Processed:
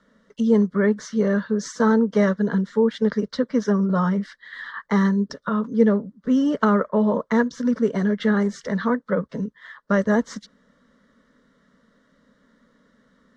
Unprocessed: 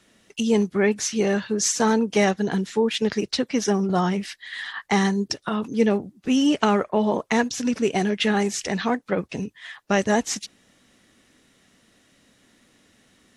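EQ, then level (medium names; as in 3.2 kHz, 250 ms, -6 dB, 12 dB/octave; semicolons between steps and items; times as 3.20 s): low-pass 2.7 kHz 12 dB/octave; static phaser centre 510 Hz, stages 8; +3.5 dB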